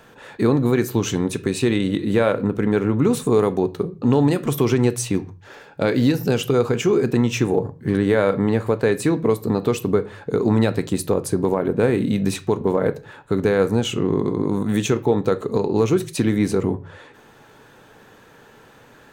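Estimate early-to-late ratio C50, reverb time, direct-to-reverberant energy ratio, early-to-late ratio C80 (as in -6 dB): 19.0 dB, not exponential, 11.5 dB, 24.0 dB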